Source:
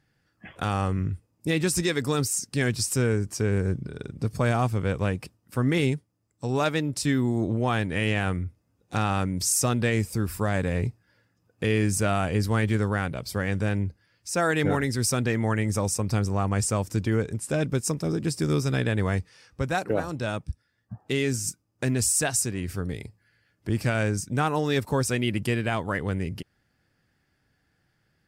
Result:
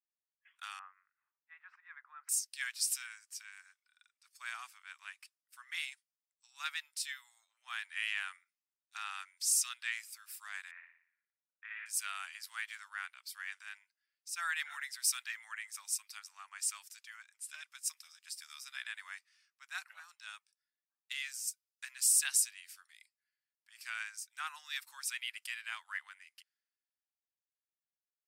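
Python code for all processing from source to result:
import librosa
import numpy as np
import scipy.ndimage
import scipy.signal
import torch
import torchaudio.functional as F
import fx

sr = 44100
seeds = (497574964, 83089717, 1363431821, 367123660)

y = fx.chain(x, sr, fx.lowpass(hz=1600.0, slope=24),
    fx.sustainer(db_per_s=98.0), at=(0.79, 2.29))
y = fx.chain(y, sr, fx.highpass(hz=840.0, slope=24),
    fx.peak_eq(hz=14000.0, db=-7.0, octaves=0.58), at=(9.22, 9.92))
y = fx.chain(y, sr, fx.lowpass(hz=2200.0, slope=24),
    fx.room_flutter(wall_m=10.0, rt60_s=0.82),
    fx.doppler_dist(depth_ms=0.14), at=(10.71, 11.86))
y = scipy.signal.sosfilt(scipy.signal.bessel(8, 2100.0, 'highpass', norm='mag', fs=sr, output='sos'), y)
y = fx.dynamic_eq(y, sr, hz=6800.0, q=1.2, threshold_db=-44.0, ratio=4.0, max_db=-6)
y = fx.band_widen(y, sr, depth_pct=70)
y = F.gain(torch.from_numpy(y), -5.5).numpy()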